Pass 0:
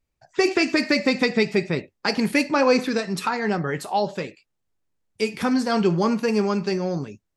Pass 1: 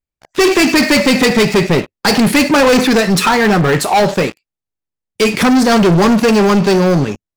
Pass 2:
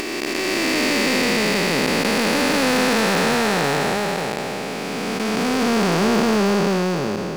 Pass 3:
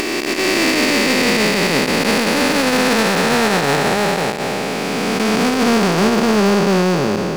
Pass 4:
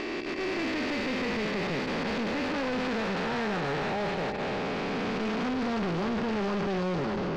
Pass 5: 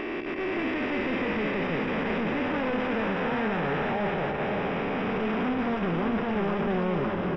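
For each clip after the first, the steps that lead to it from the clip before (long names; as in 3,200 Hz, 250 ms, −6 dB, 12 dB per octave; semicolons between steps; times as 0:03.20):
leveller curve on the samples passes 5
spectrum smeared in time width 1,180 ms; low-shelf EQ 310 Hz −7 dB; upward compression, threshold −25 dBFS
brickwall limiter −12.5 dBFS, peak gain reduction 8.5 dB; level +6 dB
automatic gain control; soft clipping −19 dBFS, distortion −6 dB; high-frequency loss of the air 200 metres; level −8.5 dB
Savitzky-Golay smoothing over 25 samples; single-tap delay 533 ms −6 dB; level +1.5 dB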